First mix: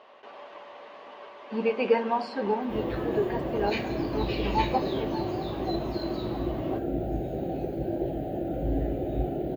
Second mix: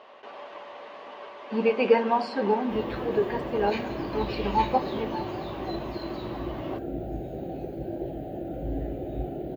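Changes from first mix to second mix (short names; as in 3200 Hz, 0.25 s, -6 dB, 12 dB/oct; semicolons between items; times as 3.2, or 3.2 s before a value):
speech +3.0 dB; background -3.5 dB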